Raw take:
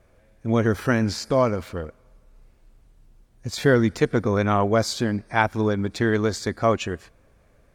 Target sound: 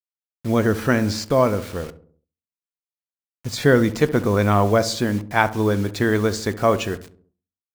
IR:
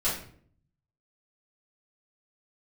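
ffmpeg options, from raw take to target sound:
-filter_complex "[0:a]acrusher=bits=6:mix=0:aa=0.000001,asplit=2[link_01][link_02];[link_02]adelay=68,lowpass=frequency=920:poles=1,volume=-13dB,asplit=2[link_03][link_04];[link_04]adelay=68,lowpass=frequency=920:poles=1,volume=0.52,asplit=2[link_05][link_06];[link_06]adelay=68,lowpass=frequency=920:poles=1,volume=0.52,asplit=2[link_07][link_08];[link_08]adelay=68,lowpass=frequency=920:poles=1,volume=0.52,asplit=2[link_09][link_10];[link_10]adelay=68,lowpass=frequency=920:poles=1,volume=0.52[link_11];[link_01][link_03][link_05][link_07][link_09][link_11]amix=inputs=6:normalize=0,asplit=2[link_12][link_13];[1:a]atrim=start_sample=2205,asetrate=83790,aresample=44100[link_14];[link_13][link_14]afir=irnorm=-1:irlink=0,volume=-20dB[link_15];[link_12][link_15]amix=inputs=2:normalize=0,volume=2dB"

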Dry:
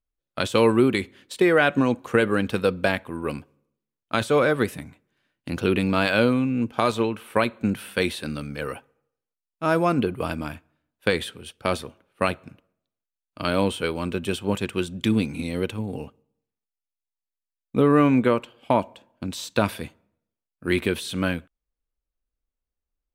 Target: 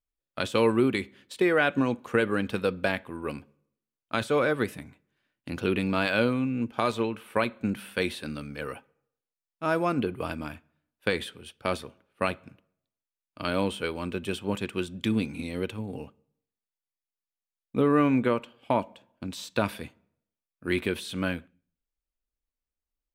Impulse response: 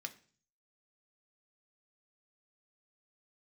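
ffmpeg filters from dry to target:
-filter_complex "[0:a]asplit=2[link_01][link_02];[1:a]atrim=start_sample=2205,lowpass=6000[link_03];[link_02][link_03]afir=irnorm=-1:irlink=0,volume=-9dB[link_04];[link_01][link_04]amix=inputs=2:normalize=0,volume=-6dB"

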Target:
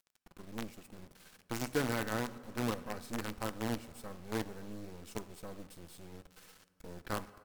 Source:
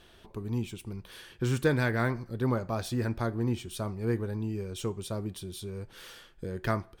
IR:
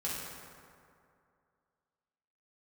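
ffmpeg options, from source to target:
-filter_complex "[0:a]equalizer=frequency=3400:width=4.9:gain=-10,aecho=1:1:3.7:0.44,acrusher=bits=5:dc=4:mix=0:aa=0.000001,asetrate=41454,aresample=44100,asplit=2[link_01][link_02];[1:a]atrim=start_sample=2205[link_03];[link_02][link_03]afir=irnorm=-1:irlink=0,volume=-17.5dB[link_04];[link_01][link_04]amix=inputs=2:normalize=0,volume=-8.5dB"

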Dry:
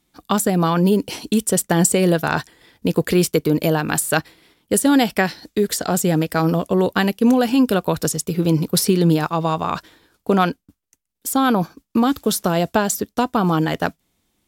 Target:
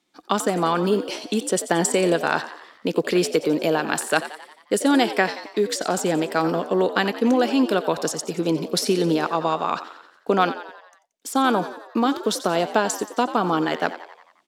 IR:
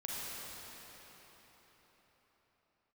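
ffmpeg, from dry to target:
-filter_complex "[0:a]acrossover=split=220 7800:gain=0.0708 1 0.178[link_01][link_02][link_03];[link_01][link_02][link_03]amix=inputs=3:normalize=0,asplit=7[link_04][link_05][link_06][link_07][link_08][link_09][link_10];[link_05]adelay=89,afreqshift=73,volume=-13.5dB[link_11];[link_06]adelay=178,afreqshift=146,volume=-18.7dB[link_12];[link_07]adelay=267,afreqshift=219,volume=-23.9dB[link_13];[link_08]adelay=356,afreqshift=292,volume=-29.1dB[link_14];[link_09]adelay=445,afreqshift=365,volume=-34.3dB[link_15];[link_10]adelay=534,afreqshift=438,volume=-39.5dB[link_16];[link_04][link_11][link_12][link_13][link_14][link_15][link_16]amix=inputs=7:normalize=0,asplit=2[link_17][link_18];[1:a]atrim=start_sample=2205,atrim=end_sample=4410[link_19];[link_18][link_19]afir=irnorm=-1:irlink=0,volume=-21dB[link_20];[link_17][link_20]amix=inputs=2:normalize=0,volume=-1.5dB"

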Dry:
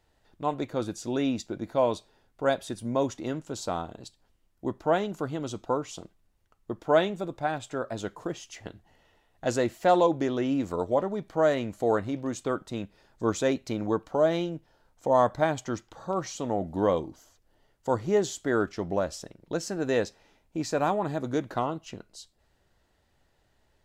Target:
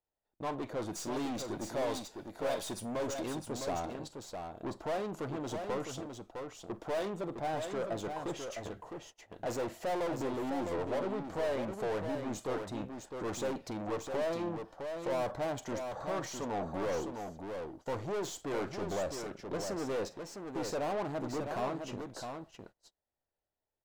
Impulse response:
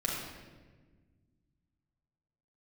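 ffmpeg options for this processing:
-filter_complex "[0:a]asettb=1/sr,asplit=3[link_01][link_02][link_03];[link_01]atrim=end=0.934[link_04];[link_02]atrim=start=0.93:end=3.28,asetpts=PTS-STARTPTS,afade=type=in:duration=0.004:curve=qsin,afade=type=out:start_time=2.346:duration=0.004:curve=qsin,highshelf=frequency=2900:gain=11[link_05];[link_03]atrim=start=3.276[link_06];[link_04][link_05]acrossfade=duration=0.004:curve1=hsin:curve2=qsin[link_07];[link_07][link_06]acrossfade=duration=0.004:curve1=qsin:curve2=hsin,aeval=exprs='(tanh(70.8*val(0)+0.3)-tanh(0.3))/70.8':channel_layout=same,equalizer=frequency=630:width_type=o:width=2.1:gain=9,aecho=1:1:46|658:0.141|0.501,agate=range=-26dB:threshold=-50dB:ratio=16:detection=peak,volume=-2.5dB"

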